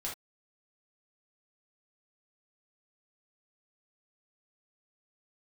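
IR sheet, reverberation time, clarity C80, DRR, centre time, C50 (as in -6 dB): not exponential, 17.5 dB, -4.5 dB, 27 ms, 5.5 dB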